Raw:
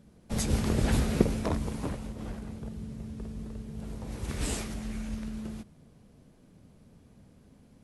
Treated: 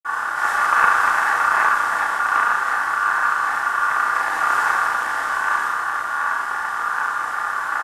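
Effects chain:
compressor on every frequency bin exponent 0.2
phase shifter 1.3 Hz, delay 2.2 ms, feedback 33%
convolution reverb, pre-delay 46 ms
ring modulation 1,300 Hz
high-shelf EQ 7,000 Hz +4.5 dB
double-tracking delay 33 ms −3.5 dB
highs frequency-modulated by the lows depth 0.17 ms
level −1 dB

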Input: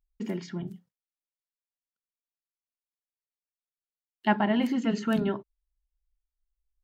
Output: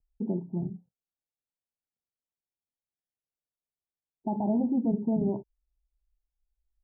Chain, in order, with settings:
brickwall limiter −20.5 dBFS, peak gain reduction 10 dB
Butterworth low-pass 910 Hz 96 dB per octave
parametric band 92 Hz +6 dB 2.1 octaves

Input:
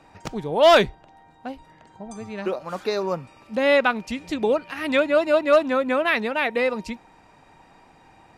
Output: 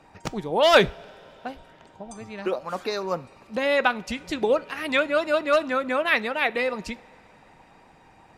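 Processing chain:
harmonic and percussive parts rebalanced percussive +7 dB
coupled-rooms reverb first 0.38 s, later 4.3 s, from −18 dB, DRR 17.5 dB
level −5 dB

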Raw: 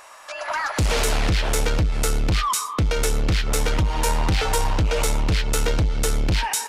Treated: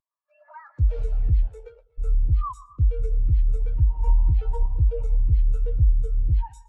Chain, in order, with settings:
0:01.47–0:01.98: Chebyshev high-pass filter 420 Hz, order 4
echo with a time of its own for lows and highs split 850 Hz, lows 199 ms, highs 121 ms, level −11 dB
every bin expanded away from the loudest bin 2.5 to 1

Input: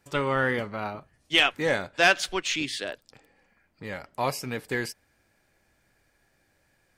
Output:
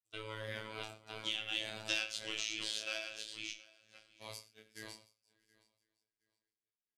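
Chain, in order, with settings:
feedback delay that plays each chunk backwards 505 ms, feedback 42%, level −4 dB
source passing by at 0:01.92, 16 m/s, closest 1.7 metres
notch filter 890 Hz, Q 12
noise gate −56 dBFS, range −23 dB
flat-topped bell 5,600 Hz +13.5 dB 2.6 octaves
downward compressor 6 to 1, threshold −40 dBFS, peak gain reduction 28 dB
chorus effect 0.51 Hz, delay 20 ms, depth 5.5 ms
repeating echo 721 ms, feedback 19%, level −23.5 dB
convolution reverb, pre-delay 6 ms, DRR 8 dB
phases set to zero 109 Hz
level +8 dB

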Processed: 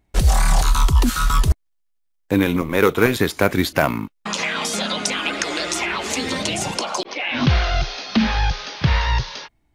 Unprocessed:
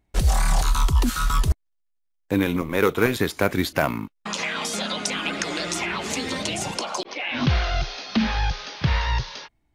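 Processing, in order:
0:05.12–0:06.18: parametric band 150 Hz −12 dB 0.8 octaves
level +4 dB

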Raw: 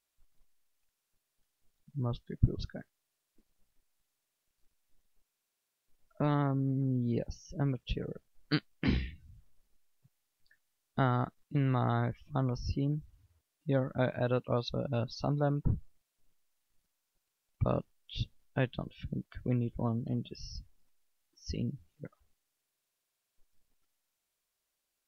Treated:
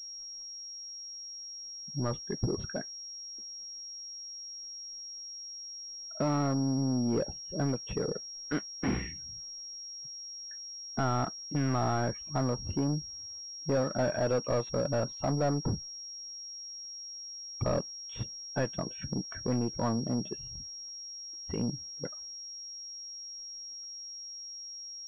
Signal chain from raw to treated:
mid-hump overdrive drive 31 dB, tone 1,900 Hz, clips at −10.5 dBFS
high-shelf EQ 2,200 Hz −9.5 dB
switching amplifier with a slow clock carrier 5,600 Hz
level −8 dB

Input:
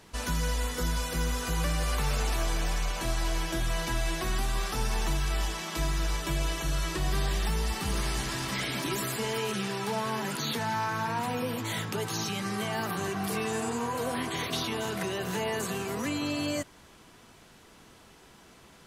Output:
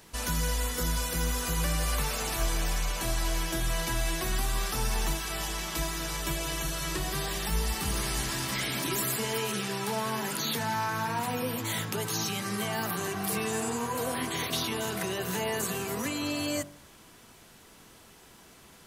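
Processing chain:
high-shelf EQ 9,900 Hz +11.5 dB
hum removal 48.3 Hz, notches 31

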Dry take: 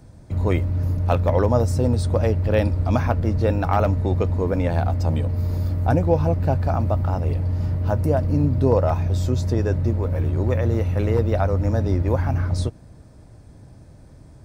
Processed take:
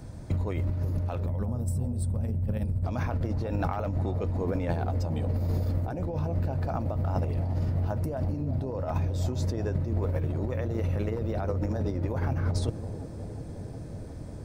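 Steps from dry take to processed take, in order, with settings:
gain on a spectral selection 0:01.26–0:02.84, 250–7,500 Hz −14 dB
compressor whose output falls as the input rises −26 dBFS, ratio −1
bucket-brigade delay 361 ms, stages 2,048, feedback 81%, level −11.5 dB
level −2 dB

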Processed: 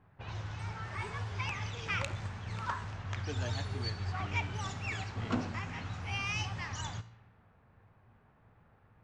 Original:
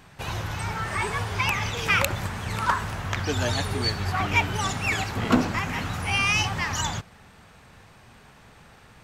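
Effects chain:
low-pass filter 7,200 Hz 24 dB per octave
parametric band 99 Hz +7.5 dB 0.55 octaves
tuned comb filter 57 Hz, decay 0.83 s, harmonics all, mix 50%
low-pass that shuts in the quiet parts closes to 1,300 Hz, open at −25.5 dBFS
level −8.5 dB

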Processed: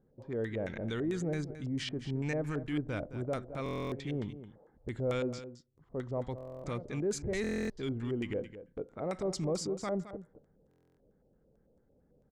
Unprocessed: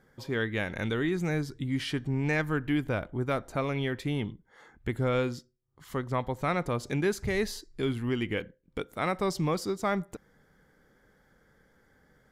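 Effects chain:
low-pass that shuts in the quiet parts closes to 490 Hz, open at −25 dBFS
dynamic equaliser 860 Hz, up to −3 dB, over −40 dBFS, Q 0.98
auto-filter low-pass square 4.5 Hz 590–7,600 Hz
in parallel at −1 dB: brickwall limiter −25 dBFS, peak gain reduction 8.5 dB
on the sum: transient designer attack −4 dB, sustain 0 dB
on a send: single-tap delay 217 ms −12.5 dB
on the sum: buffer that repeats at 0:03.64/0:06.36/0:07.42/0:10.69, samples 1,024, times 11
level −9 dB

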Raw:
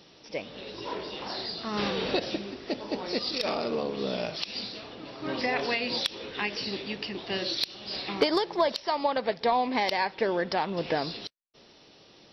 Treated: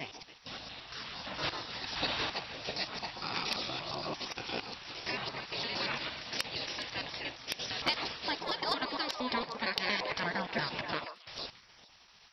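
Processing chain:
slices reordered back to front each 115 ms, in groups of 4
echo through a band-pass that steps 138 ms, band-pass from 810 Hz, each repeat 1.4 octaves, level −5.5 dB
gate on every frequency bin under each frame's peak −10 dB weak

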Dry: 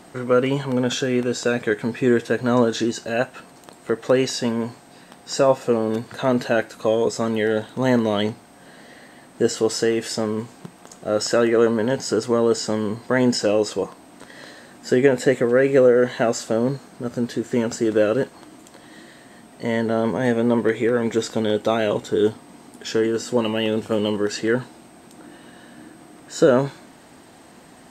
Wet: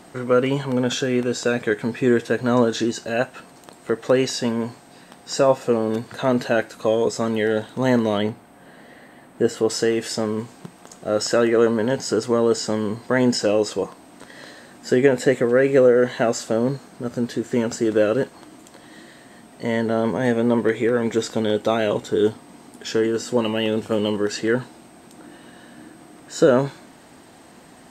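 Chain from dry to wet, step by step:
0:08.18–0:09.70: parametric band 5,700 Hz −9 dB 1.4 octaves

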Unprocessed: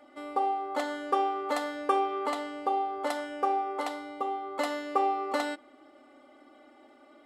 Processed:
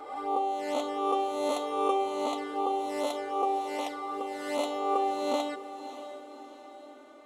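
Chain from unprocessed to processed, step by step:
peak hold with a rise ahead of every peak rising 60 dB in 1.19 s
flanger swept by the level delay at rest 3.8 ms, full sweep at −25.5 dBFS
feedback delay with all-pass diffusion 600 ms, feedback 50%, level −12.5 dB

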